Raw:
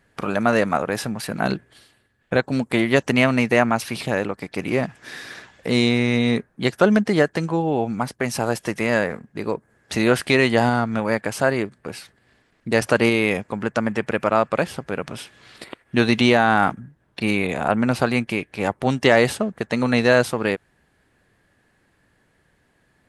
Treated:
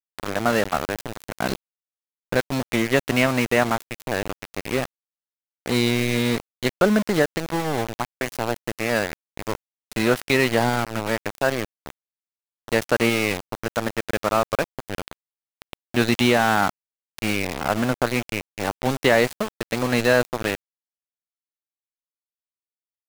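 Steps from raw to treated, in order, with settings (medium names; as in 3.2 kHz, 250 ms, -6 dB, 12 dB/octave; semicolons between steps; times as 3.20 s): small samples zeroed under -20.5 dBFS; trim -2 dB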